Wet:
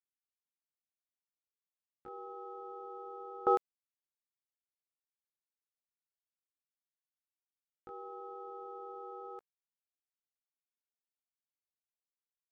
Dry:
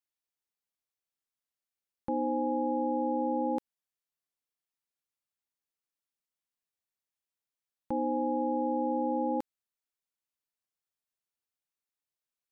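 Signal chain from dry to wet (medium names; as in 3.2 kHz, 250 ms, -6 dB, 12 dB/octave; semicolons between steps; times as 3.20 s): local Wiener filter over 9 samples; pitch shift +7.5 st; gate with hold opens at -21 dBFS; trim +5 dB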